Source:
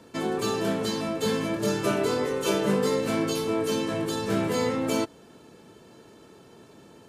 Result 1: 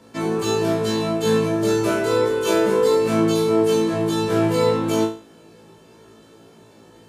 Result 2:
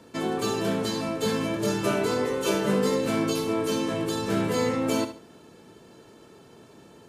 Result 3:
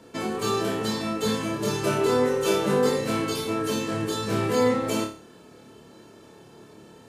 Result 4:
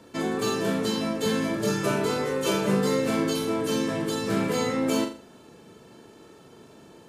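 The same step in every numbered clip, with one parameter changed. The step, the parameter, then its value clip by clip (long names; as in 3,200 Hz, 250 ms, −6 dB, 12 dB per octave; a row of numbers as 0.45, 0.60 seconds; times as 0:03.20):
flutter between parallel walls, walls apart: 3.1, 12.3, 4.8, 7.1 metres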